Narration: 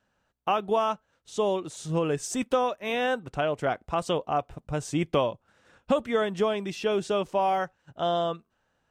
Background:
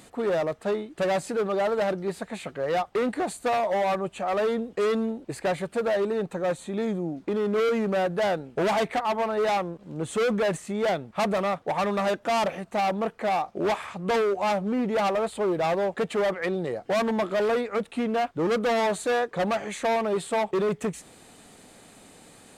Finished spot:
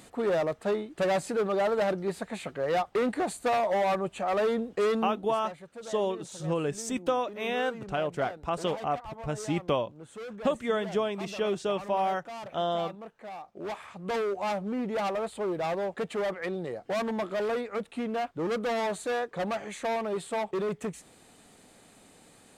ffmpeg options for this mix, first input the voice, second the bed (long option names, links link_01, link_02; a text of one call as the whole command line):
ffmpeg -i stem1.wav -i stem2.wav -filter_complex "[0:a]adelay=4550,volume=-3dB[link_01];[1:a]volume=9.5dB,afade=type=out:start_time=4.86:duration=0.56:silence=0.177828,afade=type=in:start_time=13.37:duration=0.9:silence=0.281838[link_02];[link_01][link_02]amix=inputs=2:normalize=0" out.wav